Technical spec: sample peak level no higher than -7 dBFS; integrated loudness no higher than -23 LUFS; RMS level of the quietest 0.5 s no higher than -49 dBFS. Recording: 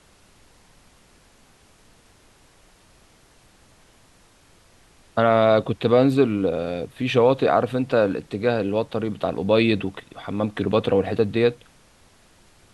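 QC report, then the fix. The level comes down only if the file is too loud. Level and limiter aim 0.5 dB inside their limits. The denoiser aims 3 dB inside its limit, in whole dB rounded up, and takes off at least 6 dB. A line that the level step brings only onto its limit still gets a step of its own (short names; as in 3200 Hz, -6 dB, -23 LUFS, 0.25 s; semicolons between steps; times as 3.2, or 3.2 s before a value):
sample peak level -5.0 dBFS: fail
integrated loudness -21.5 LUFS: fail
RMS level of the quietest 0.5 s -55 dBFS: OK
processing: gain -2 dB; limiter -7.5 dBFS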